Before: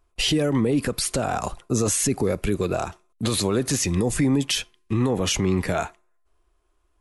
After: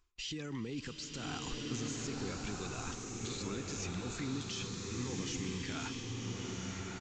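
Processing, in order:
high-shelf EQ 2,200 Hz +11 dB
reversed playback
downward compressor 6 to 1, threshold −31 dBFS, peak gain reduction 19 dB
reversed playback
parametric band 610 Hz −14 dB 0.59 octaves
brickwall limiter −29.5 dBFS, peak gain reduction 11 dB
downsampling to 16,000 Hz
slow-attack reverb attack 1,380 ms, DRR −1 dB
level −3 dB

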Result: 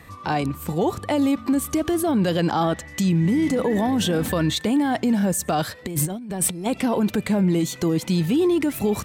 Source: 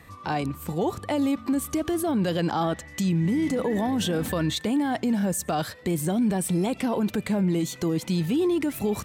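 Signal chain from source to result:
0:05.85–0:06.66: compressor whose output falls as the input rises −29 dBFS, ratio −0.5
level +4 dB

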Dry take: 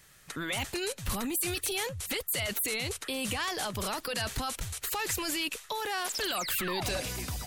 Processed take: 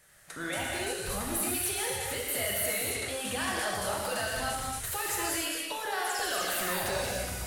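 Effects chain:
graphic EQ with 15 bands 630 Hz +10 dB, 1,600 Hz +6 dB, 10,000 Hz +7 dB
reverb whose tail is shaped and stops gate 320 ms flat, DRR −4 dB
level −8 dB

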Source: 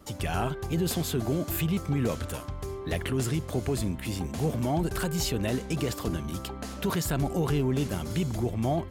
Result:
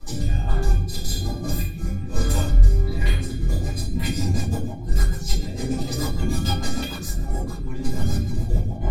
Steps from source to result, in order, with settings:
notch filter 2,900 Hz, Q 5.6
hum removal 64.82 Hz, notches 35
compressor whose output falls as the input rises −34 dBFS, ratio −0.5
parametric band 4,700 Hz +6.5 dB 1.3 octaves
tuned comb filter 810 Hz, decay 0.15 s, harmonics all, mix 90%
rectangular room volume 100 cubic metres, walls mixed, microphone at 3.6 metres
rotating-speaker cabinet horn 1.2 Hz, later 6.7 Hz, at 0:03.47
low-shelf EQ 270 Hz +9.5 dB
level +7 dB

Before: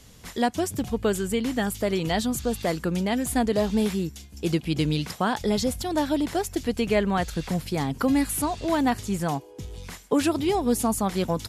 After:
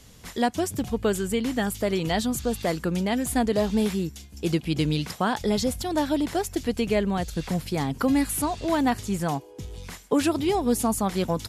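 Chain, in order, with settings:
0:06.79–0:07.36: parametric band 1,400 Hz −1.5 dB → −9.5 dB 2 octaves

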